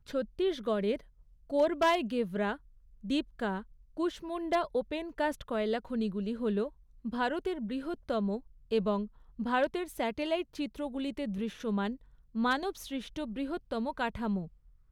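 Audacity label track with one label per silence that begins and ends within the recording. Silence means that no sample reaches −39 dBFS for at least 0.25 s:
0.960000	1.500000	silence
2.550000	3.050000	silence
3.610000	3.970000	silence
6.680000	7.050000	silence
8.380000	8.720000	silence
9.060000	9.390000	silence
11.950000	12.350000	silence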